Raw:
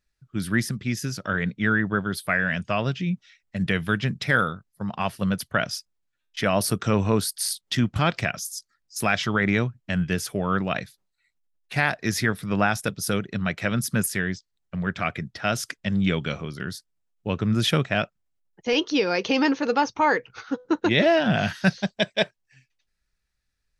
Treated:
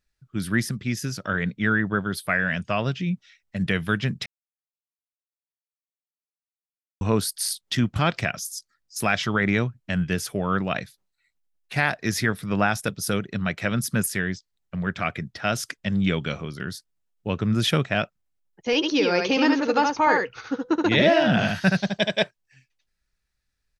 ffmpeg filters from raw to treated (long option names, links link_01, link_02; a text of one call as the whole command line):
ffmpeg -i in.wav -filter_complex "[0:a]asplit=3[link_01][link_02][link_03];[link_01]afade=type=out:start_time=18.82:duration=0.02[link_04];[link_02]aecho=1:1:74:0.668,afade=type=in:start_time=18.82:duration=0.02,afade=type=out:start_time=22.21:duration=0.02[link_05];[link_03]afade=type=in:start_time=22.21:duration=0.02[link_06];[link_04][link_05][link_06]amix=inputs=3:normalize=0,asplit=3[link_07][link_08][link_09];[link_07]atrim=end=4.26,asetpts=PTS-STARTPTS,afade=type=out:start_time=4.256:duration=0.004:curve=hsin[link_10];[link_08]atrim=start=4.26:end=7.01,asetpts=PTS-STARTPTS,volume=0[link_11];[link_09]atrim=start=7.01,asetpts=PTS-STARTPTS,afade=type=in:duration=0.004:curve=hsin[link_12];[link_10][link_11][link_12]concat=n=3:v=0:a=1" out.wav